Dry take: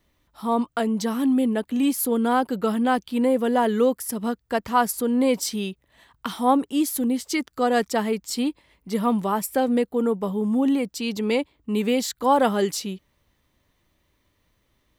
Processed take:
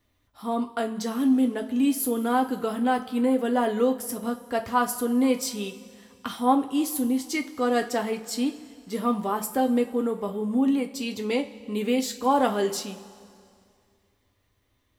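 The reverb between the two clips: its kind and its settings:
coupled-rooms reverb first 0.25 s, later 2.3 s, from −19 dB, DRR 3 dB
level −4.5 dB

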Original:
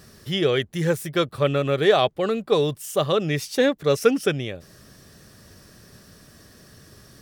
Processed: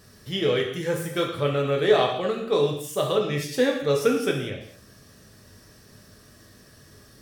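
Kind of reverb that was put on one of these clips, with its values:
reverb whose tail is shaped and stops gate 270 ms falling, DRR 0 dB
level −5 dB

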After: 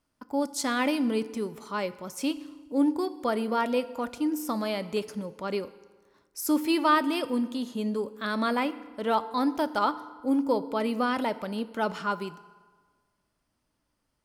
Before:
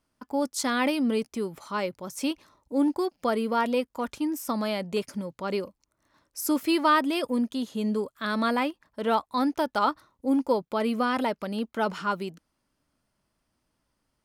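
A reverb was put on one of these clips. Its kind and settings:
feedback delay network reverb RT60 1.5 s, low-frequency decay 0.95×, high-frequency decay 0.7×, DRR 13.5 dB
level −1.5 dB

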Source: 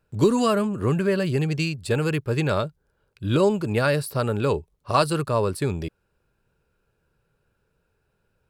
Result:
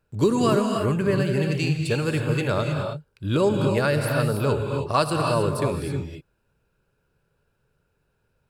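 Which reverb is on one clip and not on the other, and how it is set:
reverb whose tail is shaped and stops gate 340 ms rising, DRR 3 dB
level −1.5 dB

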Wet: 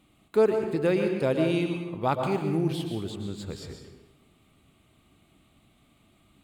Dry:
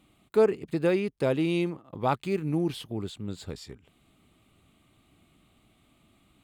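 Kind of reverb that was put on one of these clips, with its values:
dense smooth reverb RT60 0.98 s, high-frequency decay 0.7×, pre-delay 105 ms, DRR 4.5 dB

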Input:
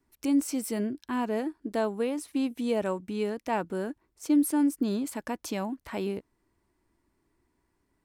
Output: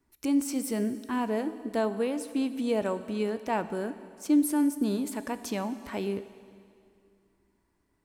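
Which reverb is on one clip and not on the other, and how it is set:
dense smooth reverb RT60 2.3 s, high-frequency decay 0.95×, DRR 11.5 dB

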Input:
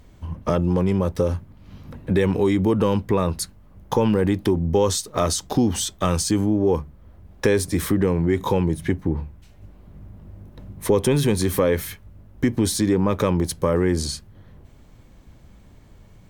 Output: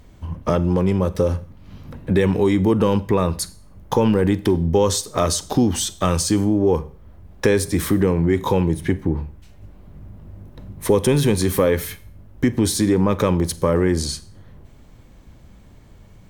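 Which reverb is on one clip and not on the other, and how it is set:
four-comb reverb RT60 0.47 s, combs from 32 ms, DRR 16.5 dB
level +2 dB

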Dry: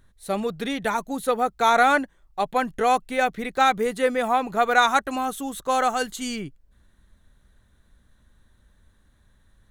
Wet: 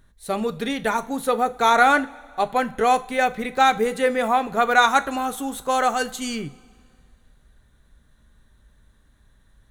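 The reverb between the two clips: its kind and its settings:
coupled-rooms reverb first 0.3 s, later 2.1 s, from −18 dB, DRR 10.5 dB
level +1.5 dB

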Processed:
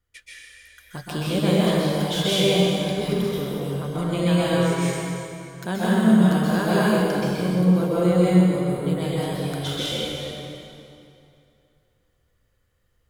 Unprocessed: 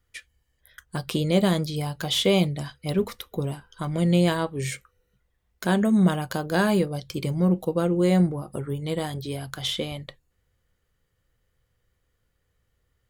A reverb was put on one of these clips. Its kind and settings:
dense smooth reverb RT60 2.7 s, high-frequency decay 0.8×, pre-delay 115 ms, DRR −8.5 dB
level −5.5 dB

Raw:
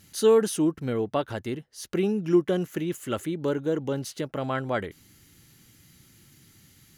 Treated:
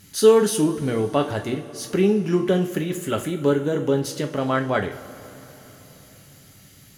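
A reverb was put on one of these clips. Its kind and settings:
coupled-rooms reverb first 0.33 s, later 4.1 s, from −20 dB, DRR 3.5 dB
level +4.5 dB

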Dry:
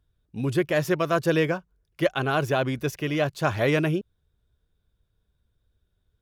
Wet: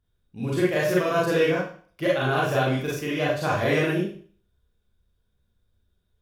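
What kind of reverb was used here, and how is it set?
four-comb reverb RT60 0.46 s, combs from 31 ms, DRR −6 dB
level −5.5 dB

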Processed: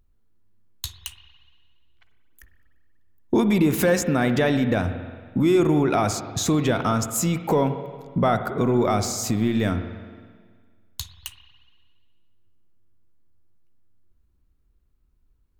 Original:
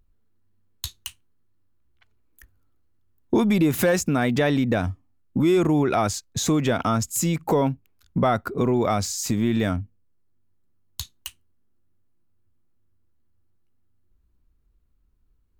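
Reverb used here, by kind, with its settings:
spring reverb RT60 1.7 s, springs 46/57 ms, chirp 70 ms, DRR 8.5 dB

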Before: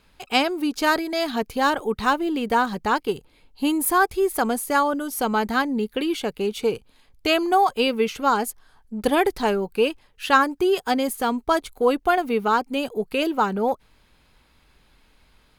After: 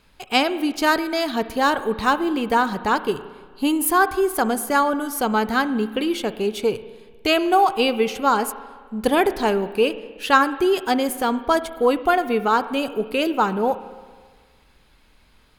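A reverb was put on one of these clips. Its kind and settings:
spring reverb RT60 1.6 s, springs 32/55 ms, chirp 75 ms, DRR 13 dB
level +1.5 dB

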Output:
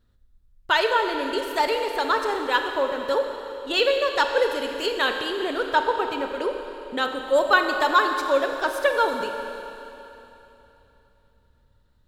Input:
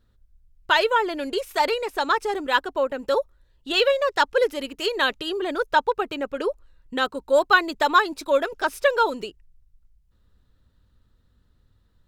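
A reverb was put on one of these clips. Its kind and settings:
four-comb reverb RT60 3.2 s, combs from 29 ms, DRR 4.5 dB
level −1.5 dB

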